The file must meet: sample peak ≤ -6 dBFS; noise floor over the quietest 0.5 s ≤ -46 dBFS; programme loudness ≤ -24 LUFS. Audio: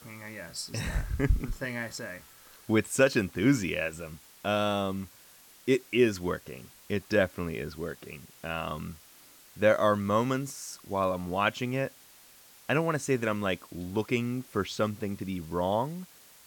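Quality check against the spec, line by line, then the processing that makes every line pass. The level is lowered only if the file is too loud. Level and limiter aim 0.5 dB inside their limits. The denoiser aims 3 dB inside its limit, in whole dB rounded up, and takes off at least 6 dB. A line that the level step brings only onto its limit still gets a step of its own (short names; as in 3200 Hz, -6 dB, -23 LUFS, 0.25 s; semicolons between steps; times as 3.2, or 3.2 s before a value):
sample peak -9.0 dBFS: OK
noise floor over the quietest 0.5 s -55 dBFS: OK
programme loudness -30.0 LUFS: OK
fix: none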